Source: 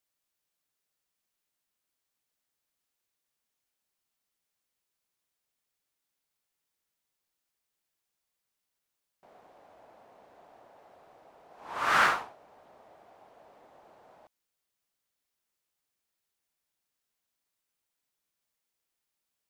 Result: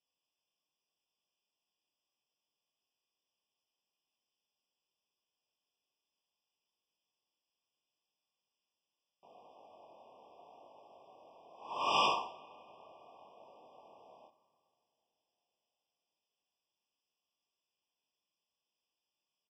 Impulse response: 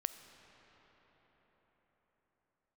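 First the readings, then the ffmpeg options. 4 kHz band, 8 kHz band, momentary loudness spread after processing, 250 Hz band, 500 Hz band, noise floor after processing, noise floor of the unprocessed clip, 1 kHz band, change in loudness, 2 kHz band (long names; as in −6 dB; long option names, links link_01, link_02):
+1.5 dB, −7.0 dB, 16 LU, −3.5 dB, −1.5 dB, below −85 dBFS, −85 dBFS, −4.5 dB, −6.5 dB, −13.5 dB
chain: -filter_complex "[0:a]highpass=frequency=280:poles=1,flanger=delay=19:depth=7.8:speed=0.74,lowpass=frequency=4600:width_type=q:width=1.8,aecho=1:1:62|124|186|248:0.158|0.0745|0.035|0.0165,asplit=2[link_01][link_02];[1:a]atrim=start_sample=2205,lowshelf=frequency=210:gain=9[link_03];[link_02][link_03]afir=irnorm=-1:irlink=0,volume=-11.5dB[link_04];[link_01][link_04]amix=inputs=2:normalize=0,afftfilt=real='re*eq(mod(floor(b*sr/1024/1200),2),0)':imag='im*eq(mod(floor(b*sr/1024/1200),2),0)':win_size=1024:overlap=0.75"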